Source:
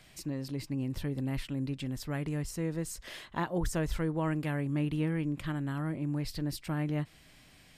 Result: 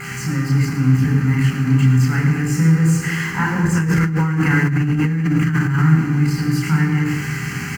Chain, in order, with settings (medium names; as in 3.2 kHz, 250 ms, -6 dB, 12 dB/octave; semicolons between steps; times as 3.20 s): jump at every zero crossing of -33.5 dBFS; reverberation RT60 1.6 s, pre-delay 3 ms, DRR 0.5 dB; vibrato 0.33 Hz 6.4 cents; bass shelf 390 Hz -9 dB; delay 111 ms -10 dB; mains buzz 400 Hz, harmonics 11, -40 dBFS -4 dB/octave; peaking EQ 170 Hz +10 dB 0.96 oct; static phaser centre 1.5 kHz, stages 4; 3.73–5.82 s: compressor with a negative ratio -21 dBFS, ratio -1; trim +4.5 dB